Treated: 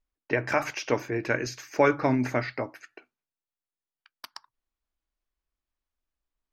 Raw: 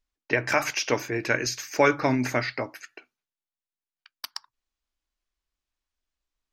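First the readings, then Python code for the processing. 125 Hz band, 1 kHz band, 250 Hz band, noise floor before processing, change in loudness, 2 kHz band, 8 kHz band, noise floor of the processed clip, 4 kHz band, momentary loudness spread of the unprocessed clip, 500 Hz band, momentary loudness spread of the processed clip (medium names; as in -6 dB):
0.0 dB, -1.5 dB, 0.0 dB, under -85 dBFS, -2.0 dB, -4.0 dB, -9.0 dB, under -85 dBFS, -8.0 dB, 16 LU, -0.5 dB, 15 LU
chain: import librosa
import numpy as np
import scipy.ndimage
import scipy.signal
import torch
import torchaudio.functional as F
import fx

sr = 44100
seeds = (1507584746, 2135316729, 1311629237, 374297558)

y = fx.high_shelf(x, sr, hz=2400.0, db=-10.5)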